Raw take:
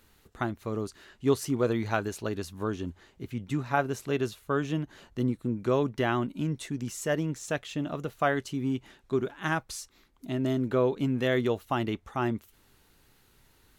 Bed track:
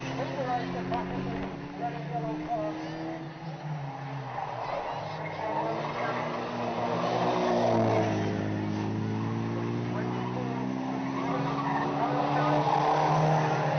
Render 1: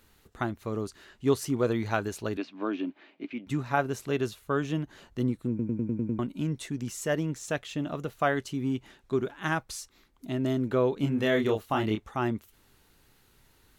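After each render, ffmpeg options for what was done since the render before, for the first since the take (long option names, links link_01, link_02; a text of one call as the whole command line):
ffmpeg -i in.wav -filter_complex "[0:a]asettb=1/sr,asplit=3[link_01][link_02][link_03];[link_01]atrim=end=2.374[link_04];[link_02]atrim=start=2.37:end=3.47,asetpts=PTS-STARTPTS,afade=type=in:duration=0.004:curve=qsin,afade=type=out:start_time=1.096:duration=0.004:curve=qsin,highpass=frequency=240:width=0.5412,highpass=frequency=240:width=1.3066,equalizer=frequency=290:width_type=q:width=4:gain=9,equalizer=frequency=440:width_type=q:width=4:gain=-5,equalizer=frequency=630:width_type=q:width=4:gain=6,equalizer=frequency=2400:width_type=q:width=4:gain=10,lowpass=frequency=4100:width=0.5412,lowpass=frequency=4100:width=1.3066[link_05];[link_03]atrim=start=3.466[link_06];[link_04][link_05]acrossfade=duration=0.004:curve1=hsin:curve2=qsin[link_07];[link_07][link_06]acrossfade=duration=0.004:curve1=qsin:curve2=hsin,asettb=1/sr,asplit=3[link_08][link_09][link_10];[link_08]atrim=end=11.004[link_11];[link_09]atrim=start=11:end=12.08,asetpts=PTS-STARTPTS,afade=type=in:duration=0.004:curve=qsin,afade=type=out:start_time=1.076:duration=0.004:curve=qsin,asplit=2[link_12][link_13];[link_13]adelay=28,volume=-4dB[link_14];[link_12][link_14]amix=inputs=2:normalize=0,atrim=end_sample=47628[link_15];[link_10]atrim=start=12.076[link_16];[link_11][link_15]acrossfade=duration=0.004:curve1=hsin:curve2=qsin[link_17];[link_17][link_16]acrossfade=duration=0.004:curve1=qsin:curve2=hsin,asplit=8[link_18][link_19][link_20][link_21][link_22][link_23][link_24][link_25];[link_18]atrim=end=5.592[link_26];[link_19]atrim=start=5.488:end=5.592[link_27];[link_20]atrim=start=5.488:end=5.592[link_28];[link_21]atrim=start=5.488:end=5.592[link_29];[link_22]atrim=start=5.488:end=5.592[link_30];[link_23]atrim=start=5.488:end=5.592[link_31];[link_24]atrim=start=5.488:end=5.592[link_32];[link_25]atrim=start=6.188[link_33];[link_26][link_27]acrossfade=duration=0.004:curve1=hsin:curve2=hsin[link_34];[link_34][link_28]acrossfade=duration=0.004:curve1=hsin:curve2=hsin[link_35];[link_35][link_29]acrossfade=duration=0.004:curve1=hsin:curve2=hsin[link_36];[link_36][link_30]acrossfade=duration=0.004:curve1=hsin:curve2=hsin[link_37];[link_37][link_31]acrossfade=duration=0.004:curve1=hsin:curve2=hsin[link_38];[link_38][link_32]acrossfade=duration=0.004:curve1=hsin:curve2=hsin[link_39];[link_39][link_33]acrossfade=duration=0.004:curve1=hsin:curve2=hsin" out.wav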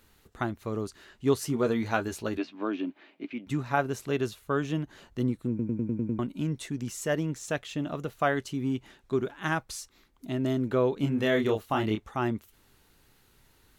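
ffmpeg -i in.wav -filter_complex "[0:a]asettb=1/sr,asplit=3[link_01][link_02][link_03];[link_01]atrim=end=1.384[link_04];[link_02]atrim=start=1.38:end=2.61,asetpts=PTS-STARTPTS,afade=type=in:duration=0.004:curve=qsin,afade=type=out:start_time=1.226:duration=0.004:curve=qsin,asplit=2[link_05][link_06];[link_06]adelay=13,volume=-7dB[link_07];[link_05][link_07]amix=inputs=2:normalize=0,atrim=end_sample=54243[link_08];[link_03]atrim=start=2.606[link_09];[link_04][link_08]acrossfade=duration=0.004:curve1=hsin:curve2=qsin[link_10];[link_10][link_09]acrossfade=duration=0.004:curve1=qsin:curve2=hsin" out.wav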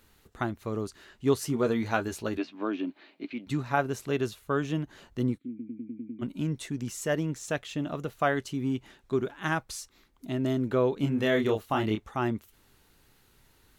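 ffmpeg -i in.wav -filter_complex "[0:a]asettb=1/sr,asplit=3[link_01][link_02][link_03];[link_01]atrim=end=2.874[link_04];[link_02]atrim=start=2.87:end=3.62,asetpts=PTS-STARTPTS,afade=type=in:duration=0.004:curve=qsin,afade=type=out:start_time=0.746:duration=0.004:curve=qsin,equalizer=frequency=4200:width_type=o:width=0.28:gain=9.5[link_05];[link_03]atrim=start=3.616[link_06];[link_04][link_05]acrossfade=duration=0.004:curve1=hsin:curve2=qsin[link_07];[link_07][link_06]acrossfade=duration=0.004:curve1=qsin:curve2=hsin,asplit=3[link_08][link_09][link_10];[link_08]afade=type=out:start_time=5.37:duration=0.02[link_11];[link_09]asplit=3[link_12][link_13][link_14];[link_12]bandpass=frequency=270:width_type=q:width=8,volume=0dB[link_15];[link_13]bandpass=frequency=2290:width_type=q:width=8,volume=-6dB[link_16];[link_14]bandpass=frequency=3010:width_type=q:width=8,volume=-9dB[link_17];[link_15][link_16][link_17]amix=inputs=3:normalize=0,afade=type=in:start_time=5.37:duration=0.02,afade=type=out:start_time=6.21:duration=0.02[link_18];[link_10]afade=type=in:start_time=6.21:duration=0.02[link_19];[link_11][link_18][link_19]amix=inputs=3:normalize=0" out.wav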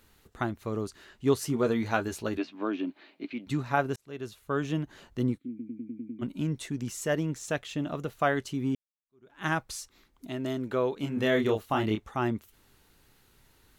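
ffmpeg -i in.wav -filter_complex "[0:a]asettb=1/sr,asplit=3[link_01][link_02][link_03];[link_01]atrim=end=10.274[link_04];[link_02]atrim=start=10.27:end=11.17,asetpts=PTS-STARTPTS,afade=type=in:duration=0.004:curve=qsin,afade=type=out:start_time=0.896:duration=0.004:curve=qsin,lowshelf=frequency=320:gain=-8[link_05];[link_03]atrim=start=11.166[link_06];[link_04][link_05]acrossfade=duration=0.004:curve1=hsin:curve2=qsin[link_07];[link_07][link_06]acrossfade=duration=0.004:curve1=qsin:curve2=hsin,asplit=3[link_08][link_09][link_10];[link_08]atrim=end=3.96,asetpts=PTS-STARTPTS,afade=type=out:start_time=3.956:duration=0.004:curve=hsin[link_11];[link_09]atrim=start=3.96:end=8.75,asetpts=PTS-STARTPTS,afade=type=in:duration=0.71,afade=type=out:start_time=4.786:duration=0.004:curve=hsin[link_12];[link_10]atrim=start=8.75,asetpts=PTS-STARTPTS,afade=type=in:duration=0.66:curve=exp[link_13];[link_11][link_12][link_13]concat=n=3:v=0:a=1" out.wav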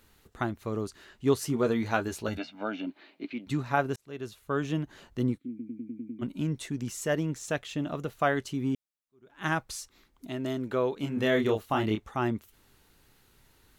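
ffmpeg -i in.wav -filter_complex "[0:a]asettb=1/sr,asplit=3[link_01][link_02][link_03];[link_01]atrim=end=2.284[link_04];[link_02]atrim=start=2.28:end=2.87,asetpts=PTS-STARTPTS,afade=type=in:duration=0.004:curve=qsin,afade=type=out:start_time=0.586:duration=0.004:curve=qsin,aecho=1:1:1.4:0.79,atrim=end_sample=26019[link_05];[link_03]atrim=start=2.866[link_06];[link_04][link_05]acrossfade=duration=0.004:curve1=hsin:curve2=qsin[link_07];[link_07][link_06]acrossfade=duration=0.004:curve1=qsin:curve2=hsin" out.wav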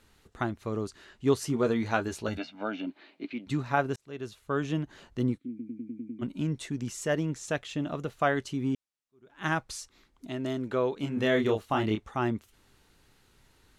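ffmpeg -i in.wav -af "lowpass=9800" out.wav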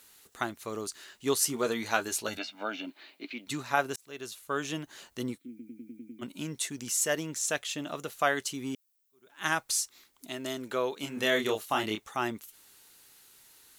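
ffmpeg -i in.wav -af "aemphasis=mode=production:type=riaa" out.wav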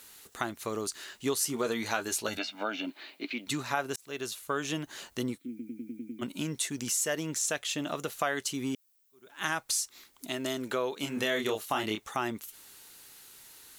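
ffmpeg -i in.wav -filter_complex "[0:a]asplit=2[link_01][link_02];[link_02]alimiter=limit=-19.5dB:level=0:latency=1,volume=-2dB[link_03];[link_01][link_03]amix=inputs=2:normalize=0,acompressor=threshold=-31dB:ratio=2" out.wav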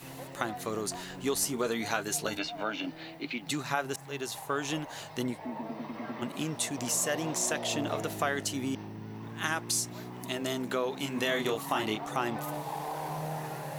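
ffmpeg -i in.wav -i bed.wav -filter_complex "[1:a]volume=-11.5dB[link_01];[0:a][link_01]amix=inputs=2:normalize=0" out.wav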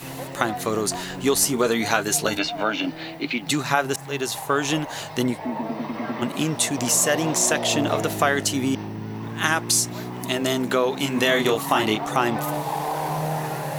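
ffmpeg -i in.wav -af "volume=10dB" out.wav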